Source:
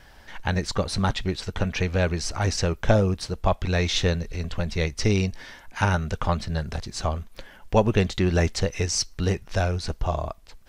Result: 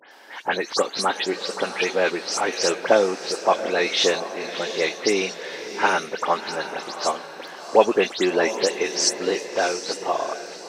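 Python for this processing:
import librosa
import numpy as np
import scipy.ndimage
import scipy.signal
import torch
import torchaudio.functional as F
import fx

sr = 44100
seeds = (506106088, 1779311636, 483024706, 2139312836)

p1 = fx.spec_delay(x, sr, highs='late', ms=113)
p2 = scipy.signal.sosfilt(scipy.signal.butter(4, 310.0, 'highpass', fs=sr, output='sos'), p1)
p3 = fx.high_shelf(p2, sr, hz=8300.0, db=-4.0)
p4 = p3 + fx.echo_diffused(p3, sr, ms=705, feedback_pct=42, wet_db=-11, dry=0)
y = F.gain(torch.from_numpy(p4), 6.0).numpy()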